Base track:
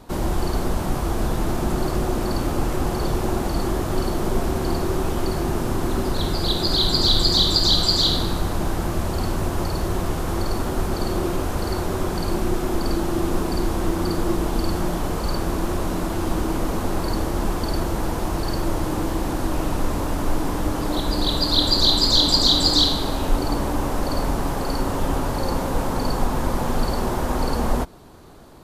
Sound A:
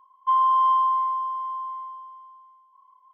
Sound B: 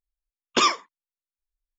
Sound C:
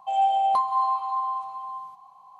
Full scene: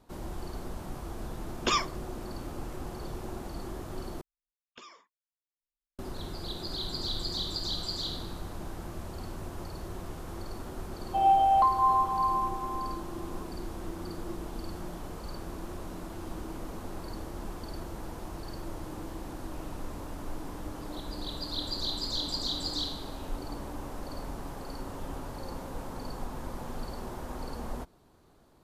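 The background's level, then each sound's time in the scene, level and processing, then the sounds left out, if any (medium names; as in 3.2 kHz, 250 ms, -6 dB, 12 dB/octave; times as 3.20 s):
base track -16 dB
1.10 s: add B -7.5 dB
4.21 s: replace with B -15.5 dB + compression 16:1, threshold -30 dBFS
11.07 s: add C -0.5 dB + low-pass 2.8 kHz
not used: A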